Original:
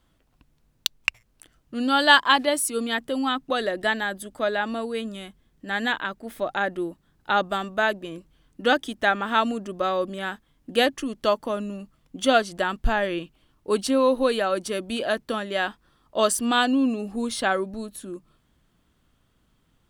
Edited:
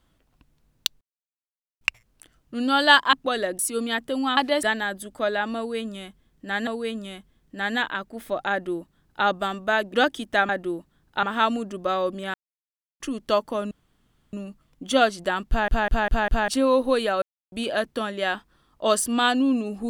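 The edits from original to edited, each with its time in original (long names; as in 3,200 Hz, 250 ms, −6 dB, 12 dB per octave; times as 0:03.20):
0:01.01: splice in silence 0.80 s
0:02.33–0:02.59: swap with 0:03.37–0:03.83
0:04.77–0:05.87: repeat, 2 plays
0:06.61–0:07.35: duplicate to 0:09.18
0:08.04–0:08.63: remove
0:10.29–0:10.95: silence
0:11.66: splice in room tone 0.62 s
0:12.81: stutter in place 0.20 s, 5 plays
0:14.55–0:14.85: silence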